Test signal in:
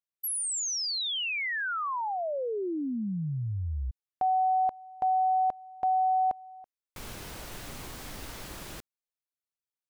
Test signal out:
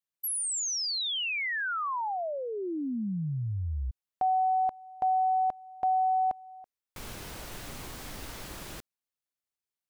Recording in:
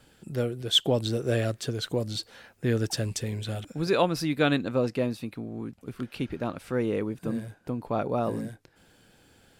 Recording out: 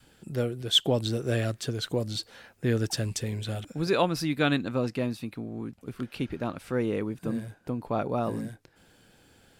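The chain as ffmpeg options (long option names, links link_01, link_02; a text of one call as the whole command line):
ffmpeg -i in.wav -af "adynamicequalizer=threshold=0.00891:dfrequency=500:dqfactor=1.7:tfrequency=500:tqfactor=1.7:attack=5:release=100:ratio=0.375:range=2.5:mode=cutabove:tftype=bell" out.wav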